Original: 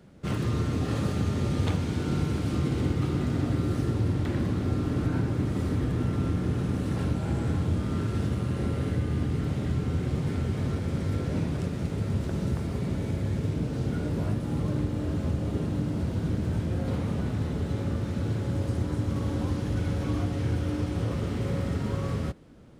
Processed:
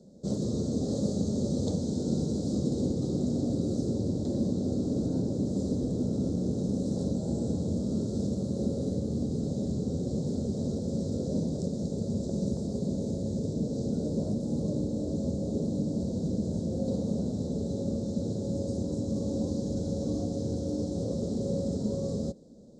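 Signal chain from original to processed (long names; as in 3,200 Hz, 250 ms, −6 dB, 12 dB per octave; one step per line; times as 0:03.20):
drawn EQ curve 120 Hz 0 dB, 220 Hz +13 dB, 310 Hz +6 dB, 550 Hz +13 dB, 1,200 Hz −15 dB, 2,700 Hz −26 dB, 3,900 Hz +7 dB, 7,500 Hz +14 dB, 11,000 Hz −10 dB
level −8.5 dB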